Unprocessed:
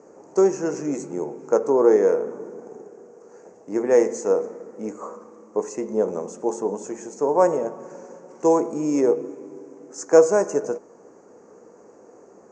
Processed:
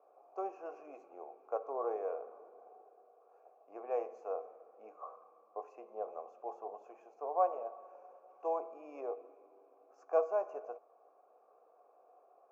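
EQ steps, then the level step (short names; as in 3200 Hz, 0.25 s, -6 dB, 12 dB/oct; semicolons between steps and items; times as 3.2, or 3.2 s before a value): vowel filter a; BPF 480–5400 Hz; air absorption 110 m; -2.5 dB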